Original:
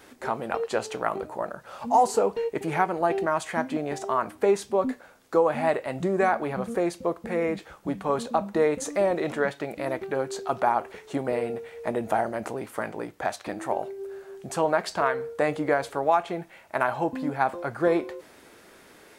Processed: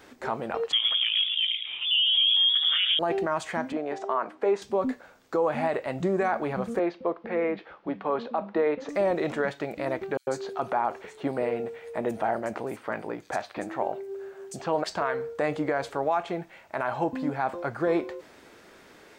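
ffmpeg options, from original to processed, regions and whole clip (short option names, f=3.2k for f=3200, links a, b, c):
-filter_complex "[0:a]asettb=1/sr,asplit=3[a][b][c];[a]atrim=end=0.724[d];[b]atrim=start=0.72:end=2.99,asetpts=PTS-STARTPTS,afade=t=in:d=0.004:c=qsin,afade=t=out:st=2.266:d=0.004:c=qsin,equalizer=f=470:t=o:w=1.4:g=12,lowpass=f=3.1k:t=q:w=0.5098,lowpass=f=3.1k:t=q:w=0.6013,lowpass=f=3.1k:t=q:w=0.9,lowpass=f=3.1k:t=q:w=2.563,afreqshift=-3700,asplit=5[e][f][g][h][i];[f]adelay=107,afreqshift=110,volume=-9dB[j];[g]adelay=214,afreqshift=220,volume=-18.9dB[k];[h]adelay=321,afreqshift=330,volume=-28.8dB[l];[i]adelay=428,afreqshift=440,volume=-38.7dB[m];[e][j][k][l][m]amix=inputs=5:normalize=0,atrim=end_sample=100107[n];[c]atrim=start=2.986[o];[d][n]acrossfade=d=0.004:c1=hsin:c2=qsin[p];[p][o]acrossfade=d=0.004:c1=qsin:c2=hsin,asettb=1/sr,asplit=3[q][r][s];[q]atrim=end=3.724[t];[r]atrim=start=3.72:end=4.62,asetpts=PTS-STARTPTS,afade=t=in:d=0.004:c=qsin,afade=t=out:st=0.896:d=0.004:c=qsin,highpass=320,aemphasis=mode=reproduction:type=75fm[u];[s]atrim=start=4.616[v];[t][u]acrossfade=d=0.004:c1=hsin:c2=qsin[w];[w][v]acrossfade=d=0.004:c1=qsin:c2=hsin,asettb=1/sr,asplit=3[x][y][z];[x]atrim=end=6.794[aa];[y]atrim=start=6.79:end=8.89,asetpts=PTS-STARTPTS,afade=t=in:d=0.004:c=qsin,afade=t=out:st=2.096:d=0.004:c=qsin,lowpass=f=5.5k:w=0.5412,lowpass=f=5.5k:w=1.3066,acrossover=split=220 3900:gain=0.2 1 0.0891[ab][ac][ad];[ab][ac][ad]amix=inputs=3:normalize=0[ae];[z]atrim=start=8.886[af];[aa][ae]acrossfade=d=0.004:c1=hsin:c2=qsin[ag];[ag][af]acrossfade=d=0.004:c1=qsin:c2=hsin,asettb=1/sr,asplit=3[ah][ai][aj];[ah]atrim=end=10.174[ak];[ai]atrim=start=10.17:end=14.84,asetpts=PTS-STARTPTS,afade=t=in:d=0.004:c=qsin,afade=t=out:st=4.666:d=0.004:c=qsin,lowshelf=f=71:g=-9,acrossover=split=4700[al][am];[al]adelay=100[an];[an][am]amix=inputs=2:normalize=0,atrim=end_sample=205947[ao];[aj]atrim=start=14.836[ap];[ak][ao]acrossfade=d=0.004:c1=hsin:c2=qsin[aq];[aq][ap]acrossfade=d=0.004:c1=qsin:c2=hsin,equalizer=f=11k:t=o:w=0.53:g=-12.5,alimiter=limit=-16dB:level=0:latency=1:release=31"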